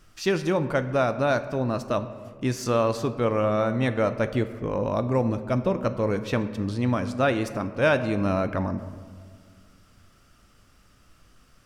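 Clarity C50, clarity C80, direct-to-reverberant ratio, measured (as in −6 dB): 12.5 dB, 13.5 dB, 10.0 dB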